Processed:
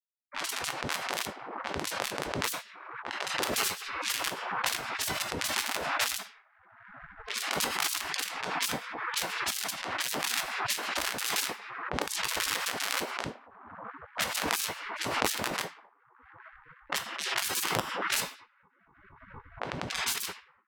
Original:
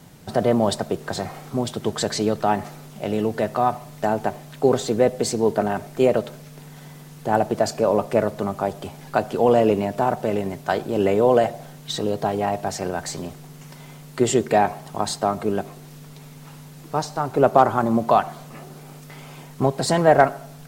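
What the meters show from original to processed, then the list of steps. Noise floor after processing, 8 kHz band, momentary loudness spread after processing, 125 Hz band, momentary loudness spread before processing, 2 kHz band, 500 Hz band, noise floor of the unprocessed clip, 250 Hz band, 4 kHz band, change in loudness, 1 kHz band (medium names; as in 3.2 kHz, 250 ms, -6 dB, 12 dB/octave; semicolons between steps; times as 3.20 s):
-65 dBFS, +1.0 dB, 11 LU, -18.0 dB, 20 LU, +0.5 dB, -20.5 dB, -43 dBFS, -19.0 dB, +2.5 dB, -9.5 dB, -12.0 dB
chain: phase randomisation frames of 50 ms; gain riding within 4 dB 0.5 s; LPC vocoder at 8 kHz pitch kept; Schmitt trigger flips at -18.5 dBFS; on a send: feedback echo behind a band-pass 236 ms, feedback 71%, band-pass 450 Hz, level -18.5 dB; on the sum: simulated room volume 120 m³, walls mixed, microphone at 0.45 m; spectral gate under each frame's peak -30 dB weak; level-controlled noise filter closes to 720 Hz, open at -36 dBFS; swell ahead of each attack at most 39 dB/s; trim +6 dB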